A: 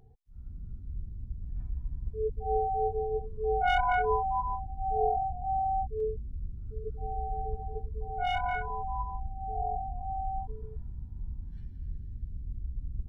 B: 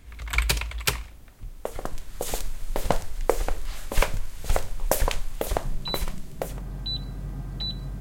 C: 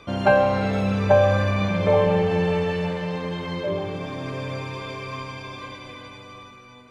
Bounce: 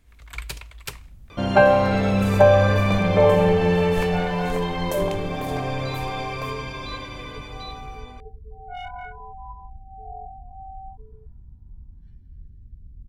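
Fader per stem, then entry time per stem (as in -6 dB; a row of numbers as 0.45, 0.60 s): -5.0, -10.0, +2.5 dB; 0.50, 0.00, 1.30 s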